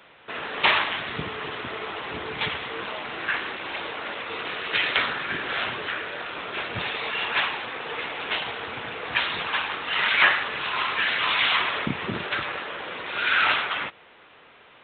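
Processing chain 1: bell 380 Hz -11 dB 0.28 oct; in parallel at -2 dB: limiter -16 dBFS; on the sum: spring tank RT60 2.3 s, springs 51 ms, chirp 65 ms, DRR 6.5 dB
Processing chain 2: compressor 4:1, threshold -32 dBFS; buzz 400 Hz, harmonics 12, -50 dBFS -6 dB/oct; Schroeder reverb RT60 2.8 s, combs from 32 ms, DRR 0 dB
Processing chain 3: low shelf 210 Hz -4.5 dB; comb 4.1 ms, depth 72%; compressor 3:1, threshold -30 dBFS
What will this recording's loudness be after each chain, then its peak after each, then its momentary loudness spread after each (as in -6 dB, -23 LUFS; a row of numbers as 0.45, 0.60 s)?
-21.0, -30.5, -31.0 LUFS; -4.0, -16.5, -14.5 dBFS; 11, 3, 5 LU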